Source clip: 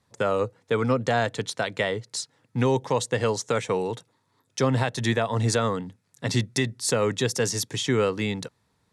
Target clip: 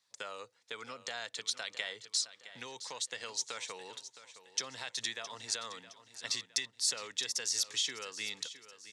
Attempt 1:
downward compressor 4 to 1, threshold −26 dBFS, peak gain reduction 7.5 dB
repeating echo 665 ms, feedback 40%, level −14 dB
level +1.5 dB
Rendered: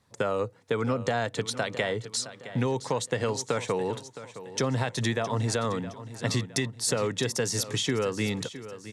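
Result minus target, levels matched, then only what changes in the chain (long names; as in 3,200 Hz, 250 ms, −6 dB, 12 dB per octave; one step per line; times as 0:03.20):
4,000 Hz band −6.0 dB
add after downward compressor: resonant band-pass 4,900 Hz, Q 1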